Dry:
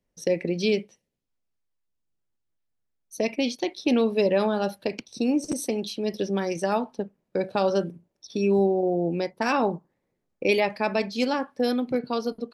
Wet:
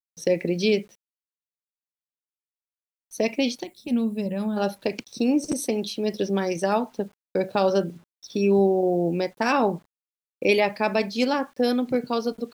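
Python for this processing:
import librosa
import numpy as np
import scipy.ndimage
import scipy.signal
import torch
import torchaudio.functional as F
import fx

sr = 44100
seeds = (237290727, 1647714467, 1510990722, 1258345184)

y = fx.quant_dither(x, sr, seeds[0], bits=10, dither='none')
y = fx.spec_box(y, sr, start_s=3.63, length_s=0.94, low_hz=240.0, high_hz=6900.0, gain_db=-13)
y = F.gain(torch.from_numpy(y), 2.0).numpy()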